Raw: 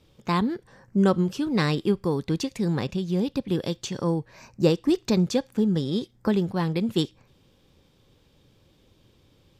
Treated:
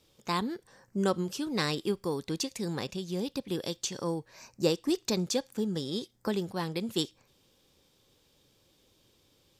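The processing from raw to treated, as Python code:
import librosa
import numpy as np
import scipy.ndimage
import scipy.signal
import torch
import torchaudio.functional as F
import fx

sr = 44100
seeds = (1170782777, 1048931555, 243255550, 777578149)

y = fx.bass_treble(x, sr, bass_db=-7, treble_db=9)
y = y * librosa.db_to_amplitude(-5.0)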